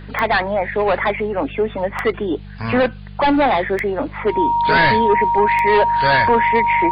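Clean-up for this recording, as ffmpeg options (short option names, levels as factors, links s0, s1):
-af "adeclick=t=4,bandreject=f=49.8:t=h:w=4,bandreject=f=99.6:t=h:w=4,bandreject=f=149.4:t=h:w=4,bandreject=f=199.2:t=h:w=4,bandreject=f=940:w=30,agate=range=0.0891:threshold=0.0562"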